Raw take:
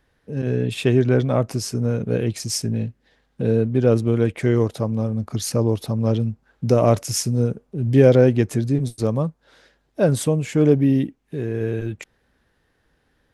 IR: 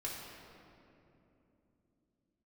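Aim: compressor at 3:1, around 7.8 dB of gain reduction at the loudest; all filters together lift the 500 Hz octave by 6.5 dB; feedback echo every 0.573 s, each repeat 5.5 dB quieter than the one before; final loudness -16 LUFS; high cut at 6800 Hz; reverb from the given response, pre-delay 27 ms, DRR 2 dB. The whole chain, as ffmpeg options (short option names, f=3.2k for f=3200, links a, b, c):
-filter_complex "[0:a]lowpass=6.8k,equalizer=f=500:t=o:g=7.5,acompressor=threshold=-14dB:ratio=3,aecho=1:1:573|1146|1719|2292|2865|3438|4011:0.531|0.281|0.149|0.079|0.0419|0.0222|0.0118,asplit=2[a][b];[1:a]atrim=start_sample=2205,adelay=27[c];[b][c]afir=irnorm=-1:irlink=0,volume=-3dB[d];[a][d]amix=inputs=2:normalize=0,volume=1dB"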